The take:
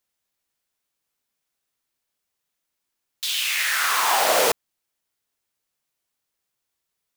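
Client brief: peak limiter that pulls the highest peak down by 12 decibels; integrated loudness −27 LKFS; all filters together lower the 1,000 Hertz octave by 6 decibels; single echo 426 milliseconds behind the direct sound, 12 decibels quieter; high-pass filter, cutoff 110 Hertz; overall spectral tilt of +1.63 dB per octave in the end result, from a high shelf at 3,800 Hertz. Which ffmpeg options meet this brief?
ffmpeg -i in.wav -af "highpass=110,equalizer=frequency=1000:width_type=o:gain=-8.5,highshelf=frequency=3800:gain=6.5,alimiter=limit=-18dB:level=0:latency=1,aecho=1:1:426:0.251,volume=-1.5dB" out.wav

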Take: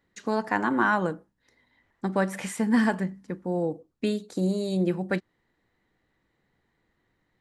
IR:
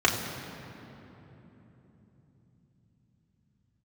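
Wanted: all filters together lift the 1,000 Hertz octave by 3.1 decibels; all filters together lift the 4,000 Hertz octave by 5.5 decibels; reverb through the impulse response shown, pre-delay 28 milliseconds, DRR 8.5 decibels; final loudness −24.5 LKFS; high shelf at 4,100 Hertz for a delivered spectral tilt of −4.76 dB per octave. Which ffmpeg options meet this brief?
-filter_complex "[0:a]equalizer=frequency=1000:width_type=o:gain=3.5,equalizer=frequency=4000:width_type=o:gain=8.5,highshelf=frequency=4100:gain=-4,asplit=2[link_01][link_02];[1:a]atrim=start_sample=2205,adelay=28[link_03];[link_02][link_03]afir=irnorm=-1:irlink=0,volume=-24.5dB[link_04];[link_01][link_04]amix=inputs=2:normalize=0,volume=1dB"

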